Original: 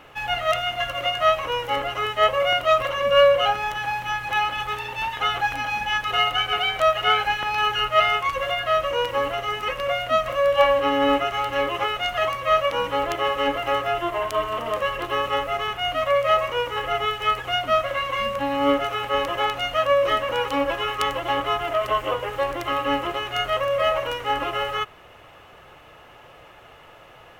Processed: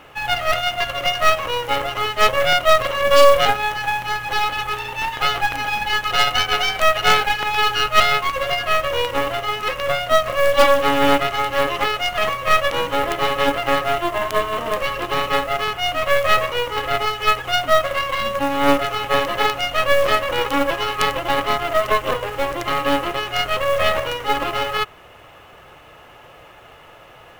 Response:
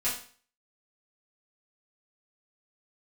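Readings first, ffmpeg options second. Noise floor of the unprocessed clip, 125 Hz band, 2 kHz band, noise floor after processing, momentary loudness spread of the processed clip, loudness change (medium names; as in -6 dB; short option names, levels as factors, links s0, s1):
-48 dBFS, +5.0 dB, +5.0 dB, -45 dBFS, 7 LU, +3.5 dB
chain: -af "aeval=exprs='0.596*(cos(1*acos(clip(val(0)/0.596,-1,1)))-cos(1*PI/2))+0.015*(cos(5*acos(clip(val(0)/0.596,-1,1)))-cos(5*PI/2))+0.168*(cos(6*acos(clip(val(0)/0.596,-1,1)))-cos(6*PI/2))+0.0335*(cos(8*acos(clip(val(0)/0.596,-1,1)))-cos(8*PI/2))':c=same,acrusher=bits=5:mode=log:mix=0:aa=0.000001,volume=1.26"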